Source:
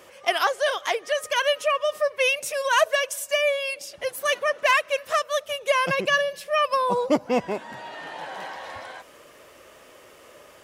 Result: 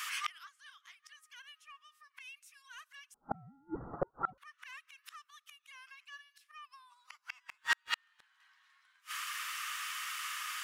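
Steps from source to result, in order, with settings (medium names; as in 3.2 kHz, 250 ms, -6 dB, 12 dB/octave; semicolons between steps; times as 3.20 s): elliptic high-pass 1.2 kHz, stop band 60 dB; 3.14–4.38 s: frequency inversion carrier 2.5 kHz; in parallel at -4 dB: saturation -22.5 dBFS, distortion -12 dB; on the sum: inverted gate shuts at -29 dBFS, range -40 dB; 7.49–8.40 s: waveshaping leveller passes 2; trim +9.5 dB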